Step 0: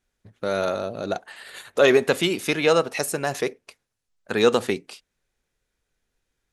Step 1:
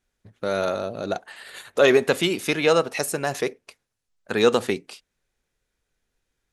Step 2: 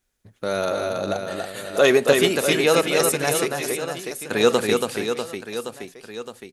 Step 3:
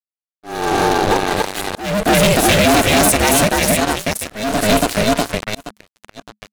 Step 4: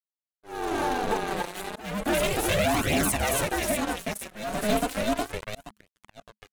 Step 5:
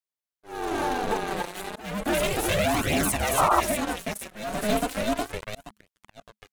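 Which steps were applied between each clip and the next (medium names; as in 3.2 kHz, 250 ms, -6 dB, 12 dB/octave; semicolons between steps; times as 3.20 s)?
no audible change
treble shelf 7.7 kHz +10.5 dB; on a send: reverse bouncing-ball echo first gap 280 ms, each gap 1.3×, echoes 5
fuzz box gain 26 dB, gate -33 dBFS; ring modulator 210 Hz; slow attack 397 ms; trim +6.5 dB
peaking EQ 4.9 kHz -4.5 dB 0.9 oct; flange 0.34 Hz, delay 0.3 ms, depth 5.5 ms, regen +5%; trim -8.5 dB
painted sound noise, 3.37–3.61 s, 580–1400 Hz -21 dBFS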